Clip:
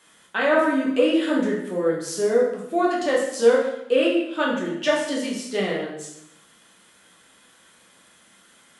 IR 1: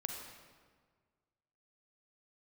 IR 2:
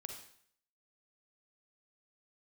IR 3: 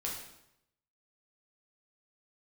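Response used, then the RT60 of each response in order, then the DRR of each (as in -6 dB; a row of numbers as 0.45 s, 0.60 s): 3; 1.6 s, 0.60 s, 0.80 s; 2.0 dB, 3.0 dB, -4.0 dB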